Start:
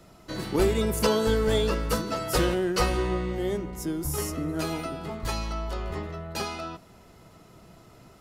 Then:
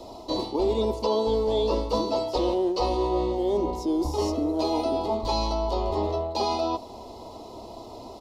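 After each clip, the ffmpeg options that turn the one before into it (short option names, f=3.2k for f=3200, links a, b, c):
-filter_complex "[0:a]acrossover=split=5900[a][b];[b]acompressor=threshold=-51dB:ratio=4:attack=1:release=60[c];[a][c]amix=inputs=2:normalize=0,firequalizer=gain_entry='entry(100,0);entry(160,-17);entry(230,5);entry(960,12);entry(1500,-22);entry(2100,-9);entry(4000,8);entry(7300,-3);entry(11000,-6)':delay=0.05:min_phase=1,areverse,acompressor=threshold=-29dB:ratio=6,areverse,volume=6.5dB"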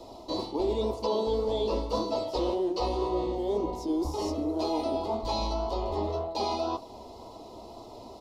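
-af "flanger=delay=5.9:depth=9.8:regen=-53:speed=1.9:shape=sinusoidal"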